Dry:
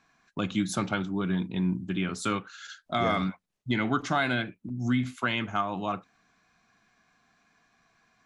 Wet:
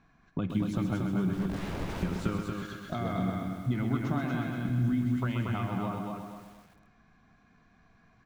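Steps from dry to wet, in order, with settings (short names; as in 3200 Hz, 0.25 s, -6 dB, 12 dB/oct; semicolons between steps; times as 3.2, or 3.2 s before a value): 1.33–2.03 wrapped overs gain 35 dB; low shelf 67 Hz -3.5 dB; compressor 3:1, threshold -38 dBFS, peak gain reduction 12.5 dB; RIAA curve playback; feedback echo 0.233 s, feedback 34%, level -4 dB; lo-fi delay 0.129 s, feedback 55%, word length 9-bit, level -6 dB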